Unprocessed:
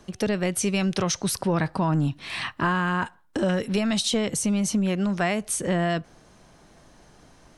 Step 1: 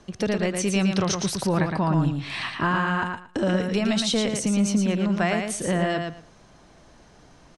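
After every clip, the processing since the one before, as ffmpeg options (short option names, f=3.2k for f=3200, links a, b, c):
-filter_complex "[0:a]lowpass=7.7k,asplit=2[a][b];[b]aecho=0:1:114|228|342:0.562|0.101|0.0182[c];[a][c]amix=inputs=2:normalize=0"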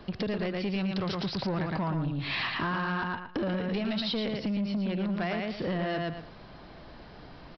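-af "acompressor=threshold=-30dB:ratio=5,aresample=11025,asoftclip=type=tanh:threshold=-29.5dB,aresample=44100,volume=4.5dB"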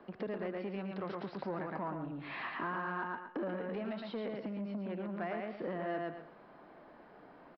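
-filter_complex "[0:a]acrossover=split=210 2100:gain=0.0794 1 0.0794[a][b][c];[a][b][c]amix=inputs=3:normalize=0,aecho=1:1:134:0.211,volume=-5dB"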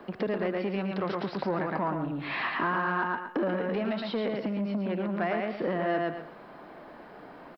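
-af "highshelf=f=3.8k:g=6,volume=9dB"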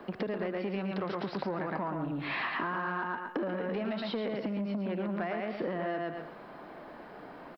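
-af "acompressor=threshold=-30dB:ratio=6"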